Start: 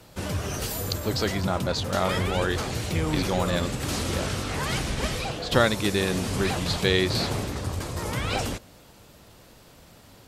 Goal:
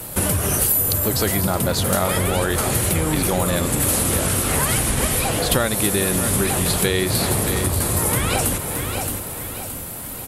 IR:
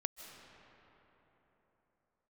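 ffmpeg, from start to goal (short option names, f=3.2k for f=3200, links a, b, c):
-filter_complex "[0:a]highshelf=f=7.8k:t=q:w=1.5:g=13.5,aecho=1:1:621|1242|1863|2484:0.2|0.0798|0.0319|0.0128,acompressor=threshold=-31dB:ratio=6,asplit=2[a][b];[b]equalizer=f=12k:t=o:w=0.77:g=3.5[c];[1:a]atrim=start_sample=2205,afade=t=out:st=0.44:d=0.01,atrim=end_sample=19845,asetrate=23373,aresample=44100[d];[c][d]afir=irnorm=-1:irlink=0,volume=-2dB[e];[a][e]amix=inputs=2:normalize=0,volume=8dB"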